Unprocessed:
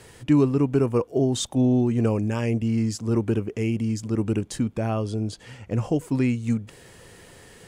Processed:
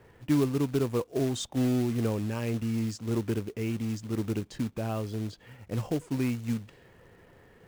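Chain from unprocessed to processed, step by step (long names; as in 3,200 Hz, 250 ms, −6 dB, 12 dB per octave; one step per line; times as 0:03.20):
low-pass that shuts in the quiet parts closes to 1,700 Hz, open at −18.5 dBFS
floating-point word with a short mantissa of 2 bits
level −6.5 dB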